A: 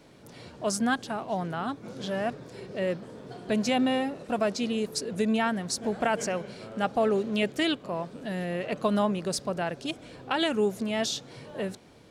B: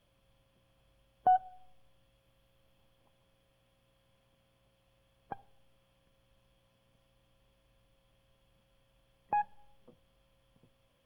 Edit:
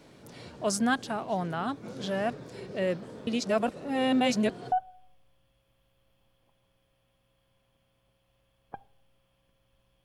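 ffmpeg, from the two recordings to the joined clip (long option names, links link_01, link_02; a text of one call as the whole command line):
ffmpeg -i cue0.wav -i cue1.wav -filter_complex "[0:a]apad=whole_dur=10.04,atrim=end=10.04,asplit=2[link_01][link_02];[link_01]atrim=end=3.272[link_03];[link_02]atrim=start=3.268:end=4.722,asetpts=PTS-STARTPTS,areverse[link_04];[1:a]atrim=start=1.298:end=6.62[link_05];[link_03][link_04]acrossfade=duration=0.004:curve1=hsin:curve2=hsin[link_06];[link_06][link_05]acrossfade=duration=0.004:curve1=hsin:curve2=hsin" out.wav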